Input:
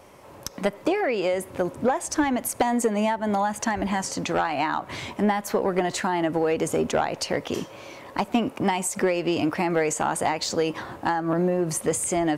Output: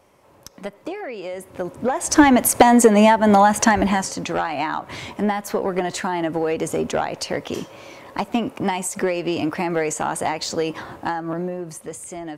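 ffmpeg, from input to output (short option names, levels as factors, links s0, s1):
-af "volume=3.35,afade=t=in:st=1.28:d=0.65:silence=0.398107,afade=t=in:st=1.93:d=0.25:silence=0.334965,afade=t=out:st=3.64:d=0.5:silence=0.334965,afade=t=out:st=10.92:d=0.84:silence=0.316228"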